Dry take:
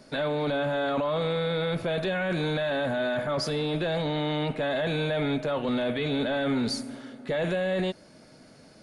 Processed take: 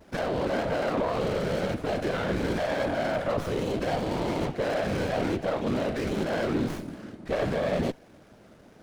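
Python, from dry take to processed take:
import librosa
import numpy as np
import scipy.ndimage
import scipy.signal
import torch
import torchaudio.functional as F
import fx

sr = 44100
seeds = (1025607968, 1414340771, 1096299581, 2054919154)

y = fx.vibrato(x, sr, rate_hz=0.8, depth_cents=55.0)
y = fx.whisperise(y, sr, seeds[0])
y = fx.running_max(y, sr, window=9)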